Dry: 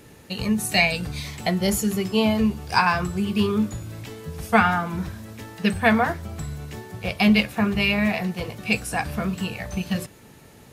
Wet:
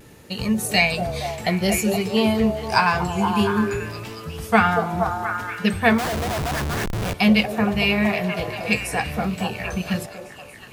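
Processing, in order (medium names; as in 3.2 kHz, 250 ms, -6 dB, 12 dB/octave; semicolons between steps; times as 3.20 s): repeats whose band climbs or falls 234 ms, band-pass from 510 Hz, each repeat 0.7 oct, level -1 dB; vibrato 0.56 Hz 19 cents; 5.98–7.14 s: Schmitt trigger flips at -30 dBFS; trim +1 dB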